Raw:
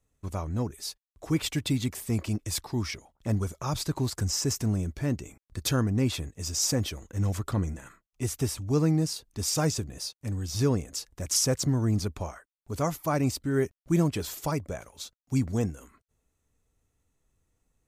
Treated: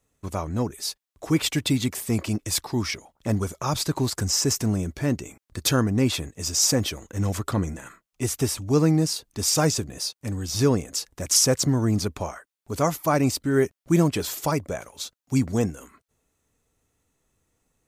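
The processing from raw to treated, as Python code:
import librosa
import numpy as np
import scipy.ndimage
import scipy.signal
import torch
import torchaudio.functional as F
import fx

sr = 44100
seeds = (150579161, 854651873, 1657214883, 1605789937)

y = fx.low_shelf(x, sr, hz=97.0, db=-11.0)
y = F.gain(torch.from_numpy(y), 6.5).numpy()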